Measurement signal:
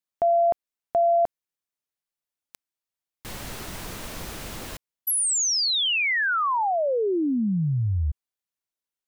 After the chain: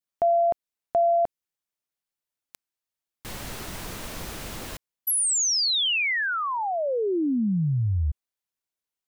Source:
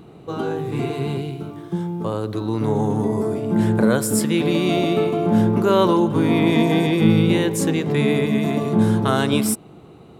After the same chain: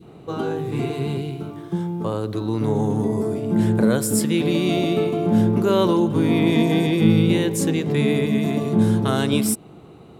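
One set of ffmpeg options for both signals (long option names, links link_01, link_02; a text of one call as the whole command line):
ffmpeg -i in.wav -af "adynamicequalizer=threshold=0.0224:dfrequency=1100:dqfactor=0.7:tfrequency=1100:tqfactor=0.7:attack=5:release=100:ratio=0.375:range=2.5:mode=cutabove:tftype=bell" out.wav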